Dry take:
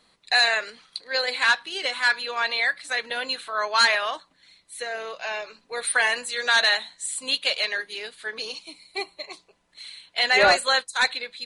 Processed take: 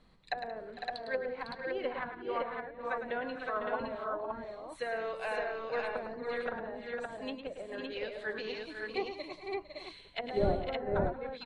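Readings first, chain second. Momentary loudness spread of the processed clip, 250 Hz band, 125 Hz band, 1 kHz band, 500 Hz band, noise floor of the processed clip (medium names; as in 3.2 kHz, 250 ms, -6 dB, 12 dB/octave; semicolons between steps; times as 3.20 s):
8 LU, +3.0 dB, no reading, -11.0 dB, -4.0 dB, -55 dBFS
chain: low-pass that closes with the level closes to 390 Hz, closed at -21 dBFS; RIAA curve playback; multi-tap echo 106/180/453/504/563 ms -8.5/-16.5/-16/-7.5/-3 dB; trim -5 dB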